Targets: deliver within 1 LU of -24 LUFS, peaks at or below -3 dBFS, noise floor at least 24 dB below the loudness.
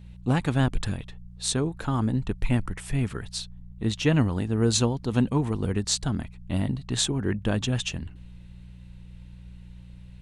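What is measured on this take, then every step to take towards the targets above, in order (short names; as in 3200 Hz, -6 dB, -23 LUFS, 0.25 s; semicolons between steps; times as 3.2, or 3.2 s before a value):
hum 60 Hz; harmonics up to 180 Hz; hum level -44 dBFS; loudness -27.0 LUFS; peak -8.0 dBFS; loudness target -24.0 LUFS
-> de-hum 60 Hz, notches 3; gain +3 dB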